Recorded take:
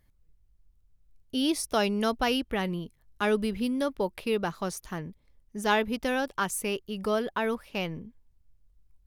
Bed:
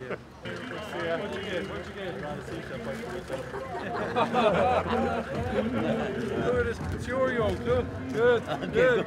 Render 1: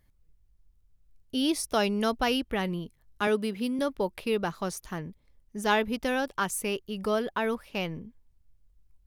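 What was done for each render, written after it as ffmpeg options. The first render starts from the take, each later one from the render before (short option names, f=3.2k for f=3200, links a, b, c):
-filter_complex "[0:a]asettb=1/sr,asplit=3[a][b][c];[a]atrim=end=3.274[d];[b]atrim=start=3.27:end=3.79,asetpts=PTS-STARTPTS,afade=t=in:d=0.004:c=qsin,afade=t=out:st=0.516:d=0.004:c=qsin,highpass=190[e];[c]atrim=start=3.786[f];[d][e]acrossfade=d=0.004:c1=hsin:c2=qsin[g];[g][f]acrossfade=d=0.004:c1=qsin:c2=hsin"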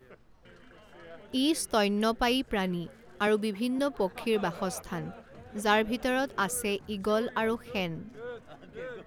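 -filter_complex "[1:a]volume=-18.5dB[a];[0:a][a]amix=inputs=2:normalize=0"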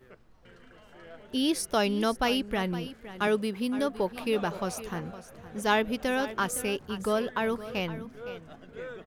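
-af "aecho=1:1:514:0.188"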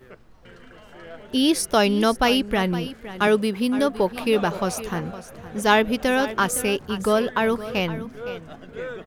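-af "volume=7.5dB"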